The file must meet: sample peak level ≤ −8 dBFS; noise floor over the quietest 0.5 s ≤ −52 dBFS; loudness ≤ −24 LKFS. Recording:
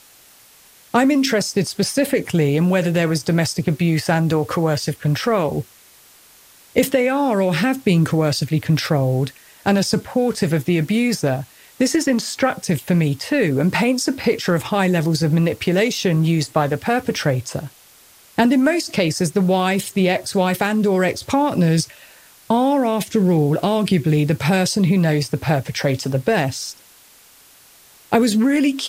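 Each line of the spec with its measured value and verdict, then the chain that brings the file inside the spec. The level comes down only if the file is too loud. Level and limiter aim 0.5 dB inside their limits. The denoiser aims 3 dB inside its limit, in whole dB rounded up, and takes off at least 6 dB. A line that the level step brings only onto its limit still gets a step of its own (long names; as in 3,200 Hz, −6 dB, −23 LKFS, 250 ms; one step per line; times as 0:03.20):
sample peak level −3.5 dBFS: out of spec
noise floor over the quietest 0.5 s −49 dBFS: out of spec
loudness −19.0 LKFS: out of spec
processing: level −5.5 dB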